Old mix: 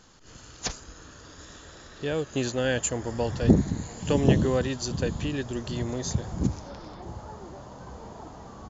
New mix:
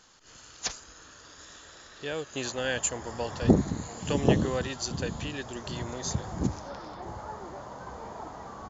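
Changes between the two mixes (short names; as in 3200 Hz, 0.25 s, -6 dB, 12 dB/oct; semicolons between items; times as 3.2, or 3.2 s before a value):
background +7.0 dB; master: add low shelf 460 Hz -11.5 dB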